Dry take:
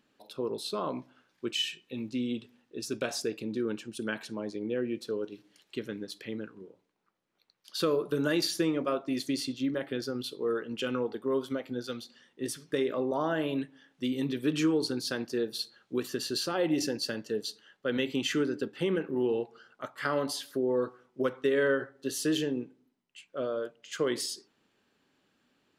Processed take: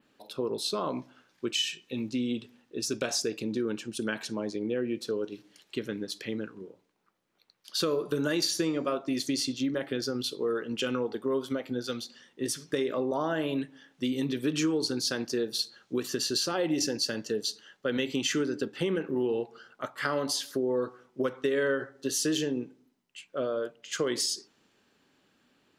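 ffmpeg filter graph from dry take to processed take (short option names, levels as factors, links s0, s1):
-filter_complex "[0:a]asettb=1/sr,asplit=3[s0][s1][s2];[s0]atrim=end=7.814[s3];[s1]atrim=start=7.81:end=8.97,asetpts=PTS-STARTPTS,afade=t=in:d=0.004:c=qsin,afade=t=out:st=1.156:d=0.004:c=qsin,bandreject=f=5100:w=20,bandreject=f=260.3:t=h:w=4,bandreject=f=520.6:t=h:w=4,bandreject=f=780.9:t=h:w=4,bandreject=f=1041.2:t=h:w=4,bandreject=f=1301.5:t=h:w=4,bandreject=f=1561.8:t=h:w=4,bandreject=f=1822.1:t=h:w=4,bandreject=f=2082.4:t=h:w=4,bandreject=f=2342.7:t=h:w=4,bandreject=f=2603:t=h:w=4,bandreject=f=2863.3:t=h:w=4,bandreject=f=3123.6:t=h:w=4,bandreject=f=3383.9:t=h:w=4,bandreject=f=3644.2:t=h:w=4,bandreject=f=3904.5:t=h:w=4,bandreject=f=4164.8:t=h:w=4,bandreject=f=4425.1:t=h:w=4,bandreject=f=4685.4:t=h:w=4,bandreject=f=4945.7:t=h:w=4,bandreject=f=5206:t=h:w=4,bandreject=f=5466.3:t=h:w=4,bandreject=f=5726.6:t=h:w=4,bandreject=f=5986.9:t=h:w=4,bandreject=f=6247.2:t=h:w=4,bandreject=f=6507.5:t=h:w=4,bandreject=f=6767.8:t=h:w=4,bandreject=f=7028.1:t=h:w=4,bandreject=f=7288.4:t=h:w=4,bandreject=f=7548.7:t=h:w=4[s4];[s2]atrim=start=8.966[s5];[s3][s4]acrossfade=d=0.004:c1=hsin:c2=qsin[s6];[s6][s5]acrossfade=d=0.004:c1=qsin:c2=hsin,adynamicequalizer=threshold=0.00251:dfrequency=6100:dqfactor=1.4:tfrequency=6100:tqfactor=1.4:attack=5:release=100:ratio=0.375:range=3.5:mode=boostabove:tftype=bell,acompressor=threshold=0.0251:ratio=2,volume=1.58"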